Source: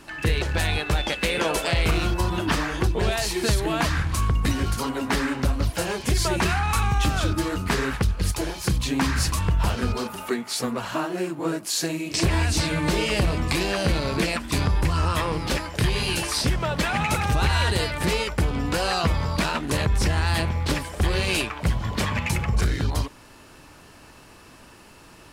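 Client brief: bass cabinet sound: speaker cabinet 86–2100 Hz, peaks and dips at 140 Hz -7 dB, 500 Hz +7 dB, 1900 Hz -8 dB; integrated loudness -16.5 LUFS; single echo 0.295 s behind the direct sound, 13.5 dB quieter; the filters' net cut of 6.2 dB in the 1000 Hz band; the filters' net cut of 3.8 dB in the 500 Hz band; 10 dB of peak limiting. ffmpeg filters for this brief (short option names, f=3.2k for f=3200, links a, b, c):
-af "equalizer=f=500:t=o:g=-7.5,equalizer=f=1k:t=o:g=-5.5,alimiter=limit=-21dB:level=0:latency=1,highpass=f=86:w=0.5412,highpass=f=86:w=1.3066,equalizer=f=140:t=q:w=4:g=-7,equalizer=f=500:t=q:w=4:g=7,equalizer=f=1.9k:t=q:w=4:g=-8,lowpass=f=2.1k:w=0.5412,lowpass=f=2.1k:w=1.3066,aecho=1:1:295:0.211,volume=17.5dB"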